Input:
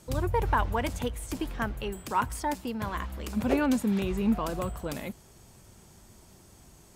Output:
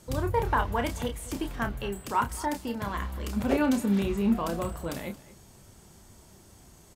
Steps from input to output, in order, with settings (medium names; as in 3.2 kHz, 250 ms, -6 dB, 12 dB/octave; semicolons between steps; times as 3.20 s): band-stop 2.5 kHz, Q 27; doubling 30 ms -7 dB; on a send: delay 227 ms -18.5 dB